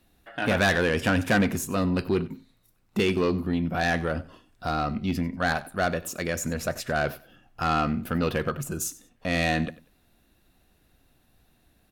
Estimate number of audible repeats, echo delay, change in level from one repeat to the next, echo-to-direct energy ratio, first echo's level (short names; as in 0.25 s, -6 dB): 2, 94 ms, -12.5 dB, -19.0 dB, -19.0 dB